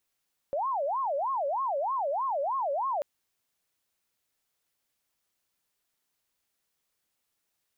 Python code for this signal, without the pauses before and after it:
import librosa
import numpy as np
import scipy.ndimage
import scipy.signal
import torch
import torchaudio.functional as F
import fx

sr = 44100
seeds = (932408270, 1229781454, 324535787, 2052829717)

y = fx.siren(sr, length_s=2.49, kind='wail', low_hz=549.0, high_hz=1090.0, per_s=3.2, wave='sine', level_db=-26.5)